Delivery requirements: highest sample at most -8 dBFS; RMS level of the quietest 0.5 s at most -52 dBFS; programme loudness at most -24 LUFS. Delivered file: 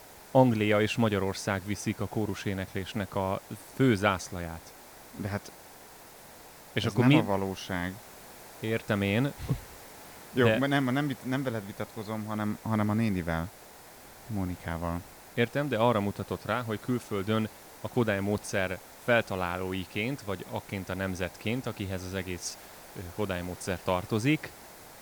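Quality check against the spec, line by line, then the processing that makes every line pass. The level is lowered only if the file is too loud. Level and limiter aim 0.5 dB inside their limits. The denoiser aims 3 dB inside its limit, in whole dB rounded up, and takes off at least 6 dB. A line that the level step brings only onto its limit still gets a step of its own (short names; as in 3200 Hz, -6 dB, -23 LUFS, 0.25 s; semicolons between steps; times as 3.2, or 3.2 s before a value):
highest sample -9.5 dBFS: OK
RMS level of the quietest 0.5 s -50 dBFS: fail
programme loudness -30.5 LUFS: OK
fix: denoiser 6 dB, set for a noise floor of -50 dBFS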